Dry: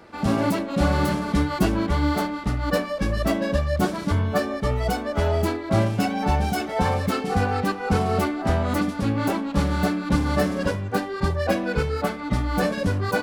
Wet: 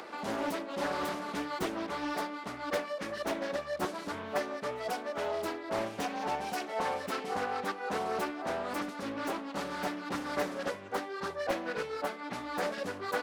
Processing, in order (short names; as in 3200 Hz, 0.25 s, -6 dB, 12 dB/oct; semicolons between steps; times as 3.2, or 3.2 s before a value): HPF 370 Hz 12 dB/oct; upward compressor, threshold -27 dBFS; Doppler distortion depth 0.71 ms; gain -8 dB